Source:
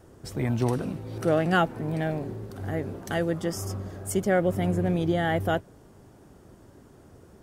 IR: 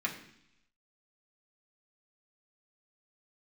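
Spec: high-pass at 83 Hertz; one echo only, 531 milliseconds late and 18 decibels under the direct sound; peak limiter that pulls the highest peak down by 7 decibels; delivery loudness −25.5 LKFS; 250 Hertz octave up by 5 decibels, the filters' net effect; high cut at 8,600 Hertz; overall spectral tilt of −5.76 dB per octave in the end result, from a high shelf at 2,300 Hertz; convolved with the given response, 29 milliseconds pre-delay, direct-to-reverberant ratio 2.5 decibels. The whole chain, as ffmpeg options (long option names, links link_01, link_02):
-filter_complex "[0:a]highpass=83,lowpass=8600,equalizer=frequency=250:width_type=o:gain=8,highshelf=frequency=2300:gain=4,alimiter=limit=-15dB:level=0:latency=1,aecho=1:1:531:0.126,asplit=2[link_01][link_02];[1:a]atrim=start_sample=2205,adelay=29[link_03];[link_02][link_03]afir=irnorm=-1:irlink=0,volume=-8dB[link_04];[link_01][link_04]amix=inputs=2:normalize=0,volume=-0.5dB"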